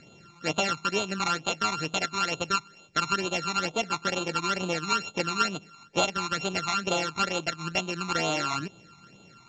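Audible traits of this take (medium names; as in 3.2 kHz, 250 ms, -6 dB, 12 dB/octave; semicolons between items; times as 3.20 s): a buzz of ramps at a fixed pitch in blocks of 32 samples; phasing stages 12, 2.2 Hz, lowest notch 520–1800 Hz; µ-law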